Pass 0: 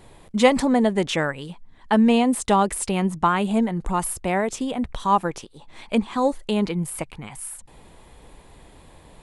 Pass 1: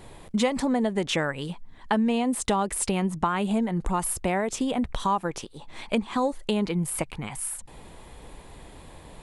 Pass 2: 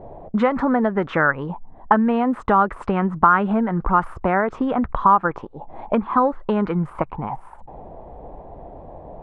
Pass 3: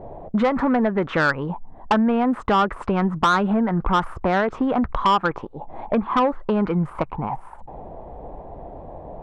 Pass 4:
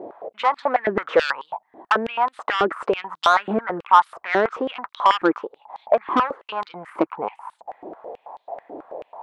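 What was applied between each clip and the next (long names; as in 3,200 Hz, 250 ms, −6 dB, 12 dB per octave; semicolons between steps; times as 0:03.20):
downward compressor 4 to 1, threshold −25 dBFS, peak gain reduction 13 dB; level +2.5 dB
envelope-controlled low-pass 630–1,400 Hz up, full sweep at −22.5 dBFS; level +4.5 dB
soft clipping −13.5 dBFS, distortion −12 dB; level +1.5 dB
high-pass on a step sequencer 9.2 Hz 330–3,800 Hz; level −1 dB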